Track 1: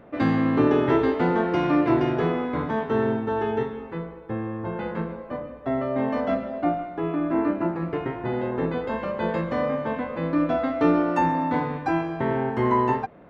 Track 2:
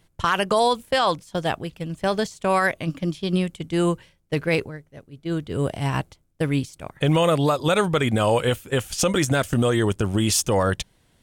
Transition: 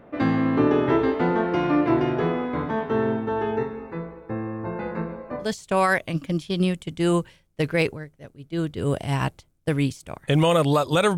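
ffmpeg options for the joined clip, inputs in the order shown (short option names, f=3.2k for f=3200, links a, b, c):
-filter_complex "[0:a]asettb=1/sr,asplit=3[a][b][c];[a]atrim=end=3.564[d];[b]atrim=start=3.56:end=5.51,asetpts=PTS-STARTPTS,afade=t=in:d=0.004:c=qsin,afade=t=out:st=1.946:d=0.004:c=qsin,asuperstop=centerf=3200:order=4:qfactor=4.4[e];[c]atrim=start=5.506[f];[d][e]acrossfade=d=0.004:c1=hsin:c2=qsin[g];[g][f]acrossfade=d=0.004:c1=qsin:c2=hsin,apad=whole_dur=11.17,atrim=end=11.17,atrim=end=5.51,asetpts=PTS-STARTPTS[h];[1:a]atrim=start=2.12:end=7.9,asetpts=PTS-STARTPTS[i];[h][i]acrossfade=d=0.12:c1=tri:c2=tri"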